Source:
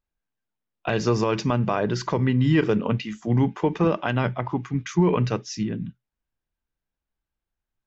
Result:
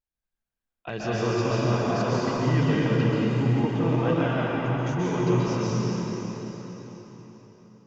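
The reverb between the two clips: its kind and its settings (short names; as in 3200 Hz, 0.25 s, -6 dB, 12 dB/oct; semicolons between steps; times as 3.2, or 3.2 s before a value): plate-style reverb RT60 4.3 s, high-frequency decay 0.9×, pre-delay 0.115 s, DRR -8 dB; gain -9.5 dB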